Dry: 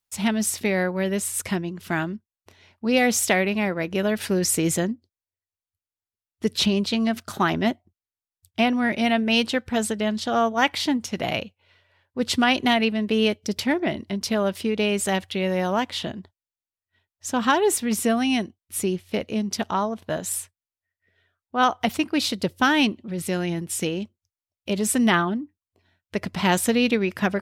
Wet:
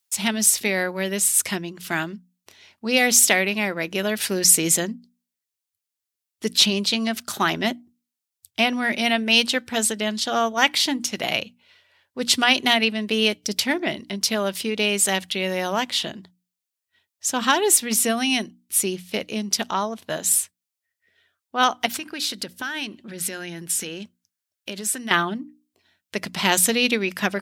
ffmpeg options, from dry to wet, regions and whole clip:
-filter_complex "[0:a]asettb=1/sr,asplit=3[s0][s1][s2];[s0]atrim=end=21.864[s3];[s1]atrim=start=21.86:end=25.11,asetpts=PTS-STARTPTS,afade=t=in:d=0.004:c=qsin,afade=t=out:st=3.246:d=0.004:c=qsin,equalizer=f=1600:t=o:w=0.34:g=8.5,acompressor=threshold=0.0398:ratio=6:attack=3.2:release=140:knee=1:detection=peak[s4];[s2]atrim=start=25.106[s5];[s3][s4]acrossfade=d=0.004:c1=hsin:c2=qsin[s6];[s6][s5]acrossfade=d=0.004:c1=qsin:c2=hsin,highpass=140,highshelf=f=2100:g=11.5,bandreject=f=60:t=h:w=6,bandreject=f=120:t=h:w=6,bandreject=f=180:t=h:w=6,bandreject=f=240:t=h:w=6,bandreject=f=300:t=h:w=6,volume=0.794"

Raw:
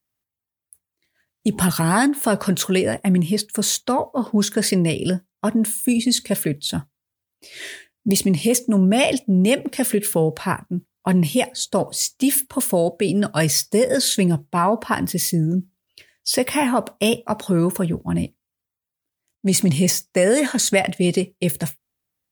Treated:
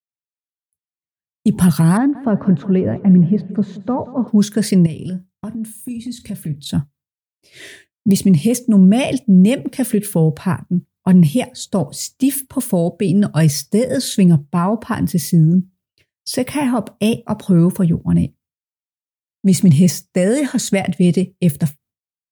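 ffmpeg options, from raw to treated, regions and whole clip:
-filter_complex "[0:a]asettb=1/sr,asplit=3[s0][s1][s2];[s0]atrim=end=1.974[s3];[s1]atrim=start=1.97:end=4.28,asetpts=PTS-STARTPTS,afade=t=in:d=0.004:c=qsin,afade=t=out:st=2.306:d=0.004:c=qsin,lowpass=1300,aecho=1:1:179|358|537|716|895:0.141|0.0819|0.0475|0.0276|0.016,atrim=end_sample=101871[s4];[s2]atrim=start=4.276[s5];[s3][s4]acrossfade=d=0.004:c1=hsin:c2=qsin[s6];[s6][s5]acrossfade=d=0.004:c1=qsin:c2=hsin,asettb=1/sr,asplit=3[s7][s8][s9];[s7]atrim=end=4.864[s10];[s8]atrim=start=4.86:end=6.66,asetpts=PTS-STARTPTS,afade=t=in:d=0.004:c=qsin,afade=t=out:st=1.796:d=0.004:c=qsin,asubboost=boost=6.5:cutoff=190,acompressor=threshold=0.0316:ratio=4:attack=3.2:release=140:knee=1:detection=peak,asplit=2[s11][s12];[s12]adelay=32,volume=0.251[s13];[s11][s13]amix=inputs=2:normalize=0,atrim=end_sample=79380[s14];[s9]atrim=start=6.656[s15];[s10][s14]acrossfade=d=0.004:c1=hsin:c2=qsin[s16];[s16][s15]acrossfade=d=0.004:c1=qsin:c2=hsin,equalizer=f=130:w=0.61:g=13.5,agate=range=0.0224:threshold=0.0126:ratio=3:detection=peak,volume=0.668"

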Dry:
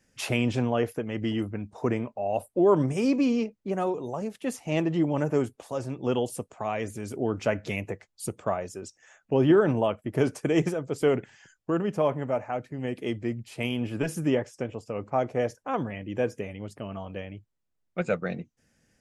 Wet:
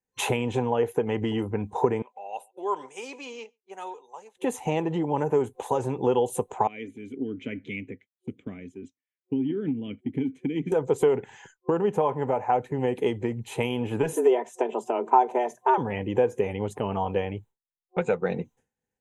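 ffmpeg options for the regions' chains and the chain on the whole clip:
-filter_complex "[0:a]asettb=1/sr,asplit=3[s0][s1][s2];[s0]atrim=end=2.024[s3];[s1]atrim=start=2.02:end=4.37,asetpts=PTS-STARTPTS,afade=t=in:d=0.004:c=qsin,afade=t=out:st=2.346:d=0.004:c=qsin,highpass=210,lowpass=5500,aderivative,aecho=1:1:140:0.0794,atrim=end_sample=103635[s4];[s2]atrim=start=4.366[s5];[s3][s4]acrossfade=d=0.004:c1=hsin:c2=qsin[s6];[s6][s5]acrossfade=d=0.004:c1=qsin:c2=hsin,asettb=1/sr,asplit=3[s7][s8][s9];[s7]atrim=end=6.674[s10];[s8]atrim=start=6.67:end=10.72,asetpts=PTS-STARTPTS,afade=t=in:d=0.004:c=qsin,afade=t=out:st=4.046:d=0.004:c=qsin,asplit=3[s11][s12][s13];[s11]bandpass=f=270:t=q:w=8,volume=1[s14];[s12]bandpass=f=2290:t=q:w=8,volume=0.501[s15];[s13]bandpass=f=3010:t=q:w=8,volume=0.355[s16];[s14][s15][s16]amix=inputs=3:normalize=0,asubboost=boost=8:cutoff=190[s17];[s9]atrim=start=10.716[s18];[s10][s17]acrossfade=d=0.004:c1=hsin:c2=qsin[s19];[s19][s18]acrossfade=d=0.004:c1=qsin:c2=hsin,asettb=1/sr,asplit=3[s20][s21][s22];[s20]atrim=end=14.134[s23];[s21]atrim=start=14.13:end=15.78,asetpts=PTS-STARTPTS,afade=t=in:d=0.004:c=qsin,afade=t=out:st=1.646:d=0.004:c=qsin,aecho=1:1:3.6:0.47,atrim=end_sample=72765,afreqshift=120[s24];[s22]atrim=start=15.776[s25];[s23][s24]acrossfade=d=0.004:c1=hsin:c2=qsin[s26];[s26][s25]acrossfade=d=0.004:c1=qsin:c2=hsin,agate=range=0.0224:threshold=0.00316:ratio=3:detection=peak,acompressor=threshold=0.0251:ratio=6,superequalizer=7b=2.51:9b=3.55:14b=0.282,volume=2.24"

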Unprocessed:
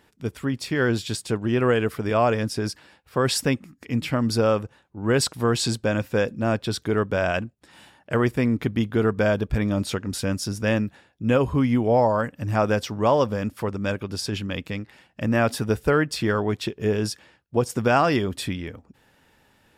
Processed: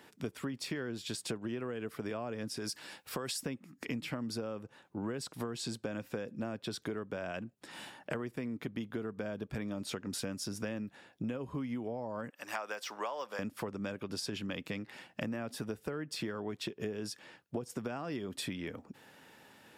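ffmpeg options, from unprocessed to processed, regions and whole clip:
-filter_complex "[0:a]asettb=1/sr,asplit=3[s0][s1][s2];[s0]atrim=end=2.574[s3];[s1]atrim=start=2.57:end=3.43,asetpts=PTS-STARTPTS,afade=t=in:d=0.004:c=qsin,afade=t=out:st=0.856:d=0.004:c=qsin,acompressor=threshold=0.0224:ratio=2:attack=3.2:release=140:knee=1:detection=peak,highshelf=f=3700:g=10[s4];[s2]atrim=start=3.426[s5];[s3][s4]acrossfade=d=0.004:c1=hsin:c2=qsin[s6];[s6][s5]acrossfade=d=0.004:c1=qsin:c2=hsin,asettb=1/sr,asplit=3[s7][s8][s9];[s7]atrim=end=12.304[s10];[s8]atrim=start=12.3:end=13.39,asetpts=PTS-STARTPTS,afade=t=in:d=0.004:c=qsin,afade=t=out:st=1.086:d=0.004:c=qsin,highpass=850,deesser=0.8[s11];[s9]atrim=start=13.386[s12];[s10][s11]acrossfade=d=0.004:c1=hsin:c2=qsin[s13];[s13][s12]acrossfade=d=0.004:c1=qsin:c2=hsin,acrossover=split=370[s14][s15];[s15]acompressor=threshold=0.0447:ratio=3[s16];[s14][s16]amix=inputs=2:normalize=0,highpass=160,acompressor=threshold=0.0141:ratio=16,volume=1.33"

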